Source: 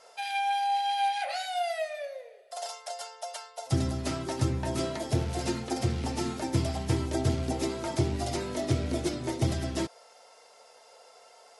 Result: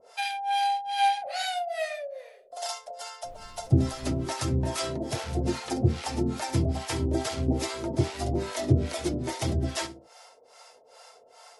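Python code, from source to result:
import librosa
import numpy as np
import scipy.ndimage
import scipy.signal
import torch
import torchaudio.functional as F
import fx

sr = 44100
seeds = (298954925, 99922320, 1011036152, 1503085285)

y = fx.echo_feedback(x, sr, ms=69, feedback_pct=28, wet_db=-13.5)
y = fx.harmonic_tremolo(y, sr, hz=2.4, depth_pct=100, crossover_hz=600.0)
y = fx.dmg_noise_colour(y, sr, seeds[0], colour='brown', level_db=-54.0, at=(3.23, 4.25), fade=0.02)
y = y * librosa.db_to_amplitude(6.5)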